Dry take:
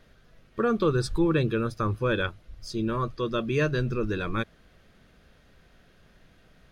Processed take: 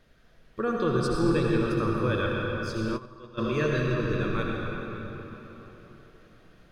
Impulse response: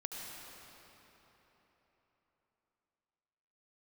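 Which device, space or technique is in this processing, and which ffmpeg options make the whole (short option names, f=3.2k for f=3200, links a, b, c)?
cathedral: -filter_complex "[1:a]atrim=start_sample=2205[a];[0:a][a]afir=irnorm=-1:irlink=0,asplit=3[b][c][d];[b]afade=t=out:st=2.96:d=0.02[e];[c]agate=range=-17dB:threshold=-25dB:ratio=16:detection=peak,afade=t=in:st=2.96:d=0.02,afade=t=out:st=3.37:d=0.02[f];[d]afade=t=in:st=3.37:d=0.02[g];[e][f][g]amix=inputs=3:normalize=0"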